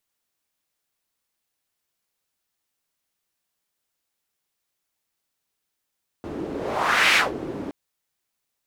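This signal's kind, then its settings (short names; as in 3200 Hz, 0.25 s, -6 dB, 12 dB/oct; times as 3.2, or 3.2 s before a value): whoosh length 1.47 s, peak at 0.92, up 0.71 s, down 0.18 s, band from 330 Hz, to 2300 Hz, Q 2.1, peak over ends 14.5 dB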